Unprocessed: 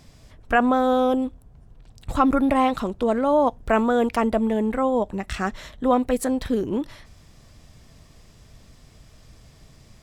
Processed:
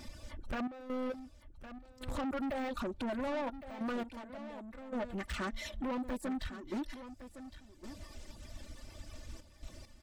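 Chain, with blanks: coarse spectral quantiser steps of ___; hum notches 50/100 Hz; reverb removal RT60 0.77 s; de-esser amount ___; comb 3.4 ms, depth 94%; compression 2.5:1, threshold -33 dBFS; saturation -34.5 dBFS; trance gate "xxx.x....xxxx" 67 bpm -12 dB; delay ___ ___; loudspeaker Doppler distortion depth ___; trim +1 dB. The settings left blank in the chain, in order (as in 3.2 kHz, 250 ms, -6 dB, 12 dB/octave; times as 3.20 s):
15 dB, 95%, 1111 ms, -12.5 dB, 0.2 ms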